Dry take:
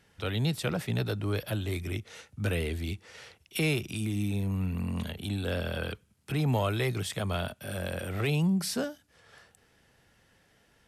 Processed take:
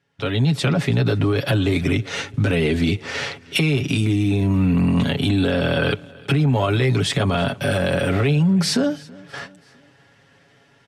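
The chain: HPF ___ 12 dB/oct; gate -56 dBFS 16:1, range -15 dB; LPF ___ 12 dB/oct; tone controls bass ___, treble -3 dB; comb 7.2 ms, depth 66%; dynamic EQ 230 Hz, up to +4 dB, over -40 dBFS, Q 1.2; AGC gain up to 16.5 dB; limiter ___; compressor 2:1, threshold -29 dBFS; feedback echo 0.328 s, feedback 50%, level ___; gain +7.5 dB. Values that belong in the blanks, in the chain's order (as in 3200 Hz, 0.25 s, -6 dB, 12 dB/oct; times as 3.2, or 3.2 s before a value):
92 Hz, 7000 Hz, +1 dB, -11 dBFS, -23.5 dB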